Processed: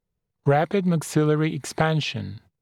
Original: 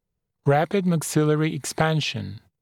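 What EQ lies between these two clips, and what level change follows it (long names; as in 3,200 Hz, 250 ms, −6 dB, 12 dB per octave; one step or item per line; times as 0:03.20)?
high-shelf EQ 5,800 Hz −7 dB
0.0 dB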